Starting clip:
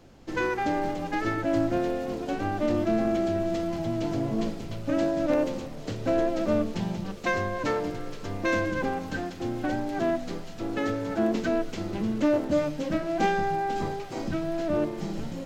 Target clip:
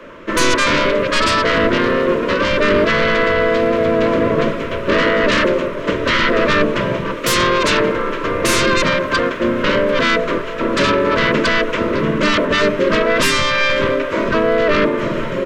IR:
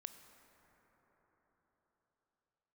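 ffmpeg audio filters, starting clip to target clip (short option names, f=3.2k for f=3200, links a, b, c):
-filter_complex "[0:a]equalizer=f=4.6k:t=o:w=0.41:g=-8.5,acrossover=split=130|500|3100[a][b][c][d];[b]aeval=exprs='0.141*(cos(1*acos(clip(val(0)/0.141,-1,1)))-cos(1*PI/2))+0.00282*(cos(3*acos(clip(val(0)/0.141,-1,1)))-cos(3*PI/2))+0.00562*(cos(5*acos(clip(val(0)/0.141,-1,1)))-cos(5*PI/2))+0.002*(cos(8*acos(clip(val(0)/0.141,-1,1)))-cos(8*PI/2))':c=same[e];[c]aeval=exprs='0.15*sin(PI/2*7.08*val(0)/0.15)':c=same[f];[a][e][f][d]amix=inputs=4:normalize=0,asplit=3[g][h][i];[h]asetrate=29433,aresample=44100,atempo=1.49831,volume=-4dB[j];[i]asetrate=33038,aresample=44100,atempo=1.33484,volume=-5dB[k];[g][j][k]amix=inputs=3:normalize=0,asuperstop=centerf=780:order=8:qfactor=3,volume=2.5dB"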